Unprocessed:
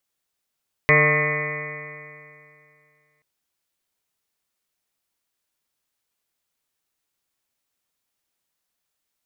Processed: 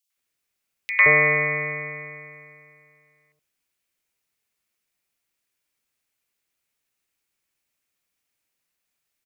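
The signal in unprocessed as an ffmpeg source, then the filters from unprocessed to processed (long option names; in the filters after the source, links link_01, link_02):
-f lavfi -i "aevalsrc='0.1*pow(10,-3*t/2.51)*sin(2*PI*148.14*t)+0.0299*pow(10,-3*t/2.51)*sin(2*PI*297.12*t)+0.0944*pow(10,-3*t/2.51)*sin(2*PI*447.78*t)+0.0794*pow(10,-3*t/2.51)*sin(2*PI*600.93*t)+0.0188*pow(10,-3*t/2.51)*sin(2*PI*757.37*t)+0.0119*pow(10,-3*t/2.51)*sin(2*PI*917.87*t)+0.075*pow(10,-3*t/2.51)*sin(2*PI*1083.15*t)+0.0316*pow(10,-3*t/2.51)*sin(2*PI*1253.92*t)+0.0112*pow(10,-3*t/2.51)*sin(2*PI*1430.83*t)+0.0126*pow(10,-3*t/2.51)*sin(2*PI*1614.49*t)+0.0891*pow(10,-3*t/2.51)*sin(2*PI*1805.47*t)+0.178*pow(10,-3*t/2.51)*sin(2*PI*2004.29*t)+0.1*pow(10,-3*t/2.51)*sin(2*PI*2211.43*t)+0.0501*pow(10,-3*t/2.51)*sin(2*PI*2427.34*t)':duration=2.33:sample_rate=44100"
-filter_complex "[0:a]equalizer=frequency=2400:width=2.1:gain=7,acrossover=split=870|3100[link_01][link_02][link_03];[link_02]adelay=100[link_04];[link_01]adelay=170[link_05];[link_05][link_04][link_03]amix=inputs=3:normalize=0,acrossover=split=260[link_06][link_07];[link_06]asoftclip=type=tanh:threshold=-32.5dB[link_08];[link_08][link_07]amix=inputs=2:normalize=0"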